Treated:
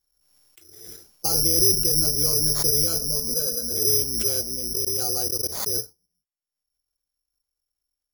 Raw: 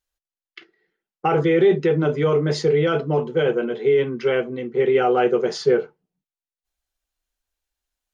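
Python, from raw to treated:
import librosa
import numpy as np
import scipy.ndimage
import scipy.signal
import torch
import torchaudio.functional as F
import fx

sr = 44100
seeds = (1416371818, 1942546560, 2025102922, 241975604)

y = fx.octave_divider(x, sr, octaves=2, level_db=-3.0)
y = scipy.signal.sosfilt(scipy.signal.butter(2, 5000.0, 'lowpass', fs=sr, output='sos'), y)
y = fx.peak_eq(y, sr, hz=2200.0, db=-11.0, octaves=2.2)
y = fx.notch(y, sr, hz=1900.0, q=8.5)
y = fx.dynamic_eq(y, sr, hz=460.0, q=1.2, threshold_db=-25.0, ratio=4.0, max_db=-3)
y = fx.fixed_phaser(y, sr, hz=510.0, stages=8, at=(2.98, 3.71))
y = fx.level_steps(y, sr, step_db=24, at=(4.75, 5.75), fade=0.02)
y = (np.kron(y[::8], np.eye(8)[0]) * 8)[:len(y)]
y = fx.pre_swell(y, sr, db_per_s=49.0)
y = y * librosa.db_to_amplitude(-10.0)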